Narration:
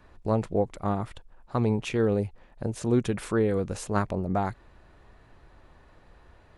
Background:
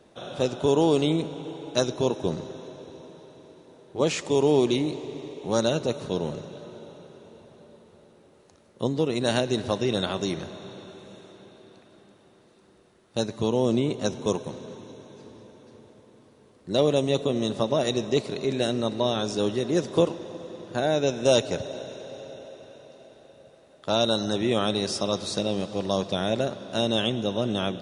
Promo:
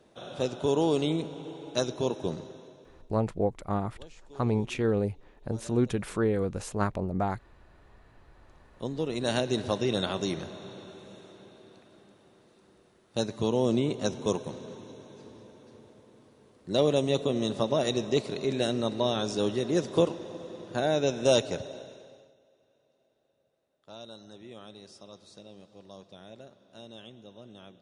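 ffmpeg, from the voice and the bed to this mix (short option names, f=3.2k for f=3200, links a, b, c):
-filter_complex "[0:a]adelay=2850,volume=-2dB[a];[1:a]volume=20dB,afade=t=out:st=2.26:d=0.92:silence=0.0749894,afade=t=in:st=8.19:d=1.36:silence=0.0595662,afade=t=out:st=21.33:d=1.01:silence=0.1[b];[a][b]amix=inputs=2:normalize=0"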